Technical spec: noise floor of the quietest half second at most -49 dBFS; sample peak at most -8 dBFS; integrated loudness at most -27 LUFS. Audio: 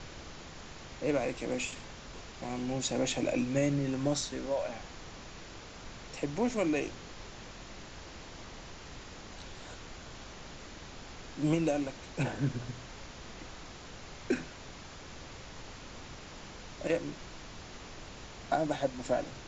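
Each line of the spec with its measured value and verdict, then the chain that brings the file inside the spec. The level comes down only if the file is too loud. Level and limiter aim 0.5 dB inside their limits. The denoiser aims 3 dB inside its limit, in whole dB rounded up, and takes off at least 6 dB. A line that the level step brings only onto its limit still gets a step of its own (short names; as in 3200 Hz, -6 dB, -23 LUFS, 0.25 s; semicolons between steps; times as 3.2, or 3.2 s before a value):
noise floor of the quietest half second -47 dBFS: fail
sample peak -15.5 dBFS: OK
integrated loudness -34.5 LUFS: OK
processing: denoiser 6 dB, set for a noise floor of -47 dBFS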